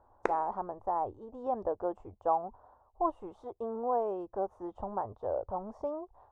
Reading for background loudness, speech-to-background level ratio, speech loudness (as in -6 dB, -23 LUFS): -38.5 LUFS, 3.0 dB, -35.5 LUFS